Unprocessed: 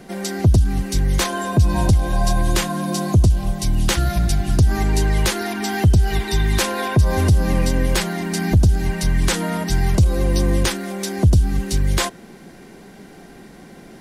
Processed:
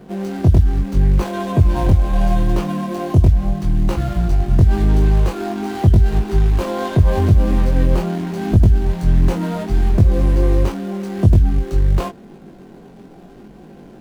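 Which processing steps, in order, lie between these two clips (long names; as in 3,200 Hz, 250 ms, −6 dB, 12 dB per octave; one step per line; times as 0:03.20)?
running median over 25 samples
chorus effect 0.81 Hz, delay 19.5 ms, depth 3.4 ms
level +5 dB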